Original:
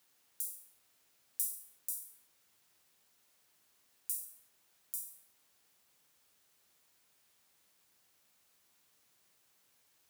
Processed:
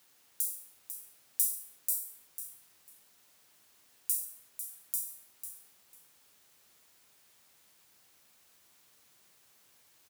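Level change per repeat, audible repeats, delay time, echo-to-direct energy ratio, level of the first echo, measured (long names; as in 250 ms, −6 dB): −15.5 dB, 2, 497 ms, −10.0 dB, −10.0 dB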